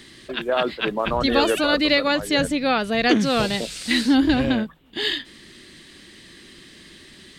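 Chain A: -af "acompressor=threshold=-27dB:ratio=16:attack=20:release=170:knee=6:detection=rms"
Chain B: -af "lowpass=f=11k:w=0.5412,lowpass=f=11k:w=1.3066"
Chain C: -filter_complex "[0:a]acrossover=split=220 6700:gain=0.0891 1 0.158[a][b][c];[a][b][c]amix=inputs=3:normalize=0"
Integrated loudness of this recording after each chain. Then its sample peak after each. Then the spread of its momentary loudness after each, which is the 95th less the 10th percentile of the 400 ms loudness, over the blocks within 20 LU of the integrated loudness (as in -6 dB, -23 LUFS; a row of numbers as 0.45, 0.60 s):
-31.0, -21.0, -22.0 LUFS; -15.0, -5.5, -5.0 dBFS; 14, 8, 9 LU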